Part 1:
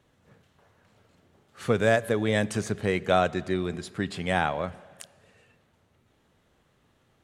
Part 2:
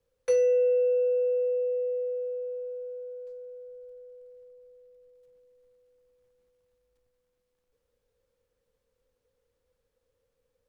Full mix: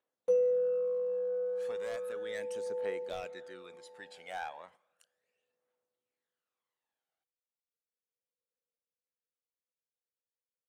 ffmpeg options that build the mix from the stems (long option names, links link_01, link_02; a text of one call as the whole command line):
ffmpeg -i stem1.wav -i stem2.wav -filter_complex "[0:a]highpass=500,volume=19dB,asoftclip=hard,volume=-19dB,volume=-16.5dB[link_01];[1:a]afwtdn=0.0112,highpass=190,volume=-4.5dB[link_02];[link_01][link_02]amix=inputs=2:normalize=0,agate=range=-8dB:threshold=-58dB:ratio=16:detection=peak,aphaser=in_gain=1:out_gain=1:delay=1.4:decay=0.55:speed=0.35:type=triangular" out.wav